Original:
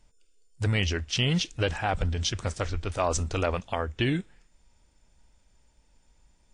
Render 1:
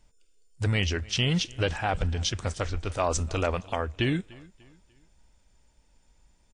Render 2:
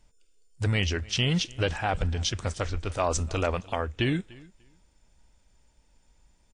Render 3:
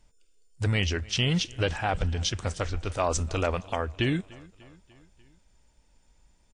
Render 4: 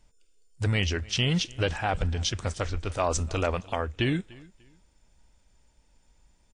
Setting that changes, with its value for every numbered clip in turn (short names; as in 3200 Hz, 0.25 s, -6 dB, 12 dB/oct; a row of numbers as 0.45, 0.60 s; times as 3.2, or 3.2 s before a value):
feedback echo, feedback: 40, 18, 60, 27%